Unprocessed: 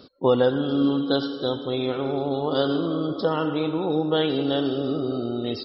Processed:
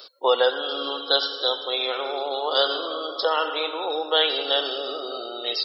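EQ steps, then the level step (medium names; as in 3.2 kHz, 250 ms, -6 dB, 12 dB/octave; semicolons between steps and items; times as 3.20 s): high-pass 470 Hz 24 dB/octave; tilt EQ +3 dB/octave; +4.5 dB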